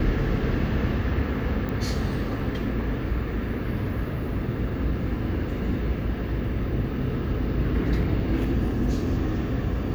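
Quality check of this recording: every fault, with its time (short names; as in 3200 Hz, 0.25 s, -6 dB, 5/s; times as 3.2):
1.69 pop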